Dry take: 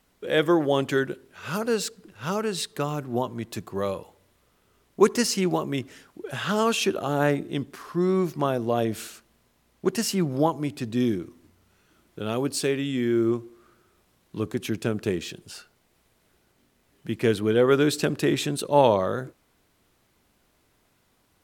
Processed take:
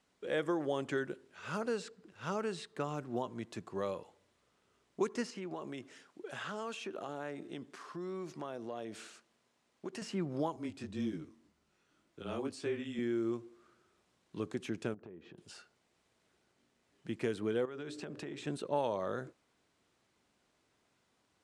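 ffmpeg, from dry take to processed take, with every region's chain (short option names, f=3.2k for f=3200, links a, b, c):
-filter_complex "[0:a]asettb=1/sr,asplit=3[a][b][c];[a]atrim=end=5.304[d];[b]atrim=start=5.3:end=10.02,asetpts=PTS-STARTPTS,afade=t=in:d=0.004:c=qsin,afade=t=out:st=4.716:d=0.004:c=qsin,acompressor=threshold=-28dB:ratio=5:attack=3.2:release=140:knee=1:detection=peak,highpass=f=200:p=1[e];[c]atrim=start=10.016[f];[d][e]acrossfade=d=0.004:c1=hsin:c2=qsin[g];[g][f]acrossfade=d=0.004:c1=qsin:c2=hsin,asettb=1/sr,asplit=3[h][i][j];[h]atrim=end=10.564[k];[i]atrim=start=10.56:end=12.99,asetpts=PTS-STARTPTS,afade=t=in:d=0.004:c=qsin,afade=t=out:st=2.426:d=0.004:c=qsin,afreqshift=-19,flanger=delay=17.5:depth=4.8:speed=1.9[l];[j]atrim=start=12.986[m];[k][l]acrossfade=d=0.004:c1=hsin:c2=qsin[n];[n][m]acrossfade=d=0.004:c1=qsin:c2=hsin,asettb=1/sr,asplit=3[o][p][q];[o]atrim=end=14.944[r];[p]atrim=start=14.94:end=15.38,asetpts=PTS-STARTPTS,afade=t=in:d=0.004:c=qsin,afade=t=out:st=0.436:d=0.004:c=qsin,lowpass=1.2k,acompressor=threshold=-39dB:ratio=6:attack=3.2:release=140:knee=1:detection=peak[s];[q]atrim=start=15.376[t];[r][s]acrossfade=d=0.004:c1=hsin:c2=qsin[u];[u][t]acrossfade=d=0.004:c1=qsin:c2=hsin,asettb=1/sr,asplit=3[v][w][x];[v]atrim=end=17.654[y];[w]atrim=start=17.65:end=18.47,asetpts=PTS-STARTPTS,afade=t=in:d=0.004:c=qsin,afade=t=out:st=0.816:d=0.004:c=qsin,highshelf=f=7.9k:g=-7.5,bandreject=f=60:t=h:w=6,bandreject=f=120:t=h:w=6,bandreject=f=180:t=h:w=6,bandreject=f=240:t=h:w=6,bandreject=f=300:t=h:w=6,bandreject=f=360:t=h:w=6,bandreject=f=420:t=h:w=6,bandreject=f=480:t=h:w=6,bandreject=f=540:t=h:w=6,bandreject=f=600:t=h:w=6,acompressor=threshold=-30dB:ratio=16:attack=3.2:release=140:knee=1:detection=peak[z];[x]atrim=start=18.466[aa];[y][z]acrossfade=d=0.004:c1=hsin:c2=qsin[ab];[ab][aa]acrossfade=d=0.004:c1=qsin:c2=hsin,lowpass=f=8.8k:w=0.5412,lowpass=f=8.8k:w=1.3066,acrossover=split=2700|5500[ac][ad][ae];[ac]acompressor=threshold=-22dB:ratio=4[af];[ad]acompressor=threshold=-52dB:ratio=4[ag];[ae]acompressor=threshold=-49dB:ratio=4[ah];[af][ag][ah]amix=inputs=3:normalize=0,highpass=f=160:p=1,volume=-7.5dB"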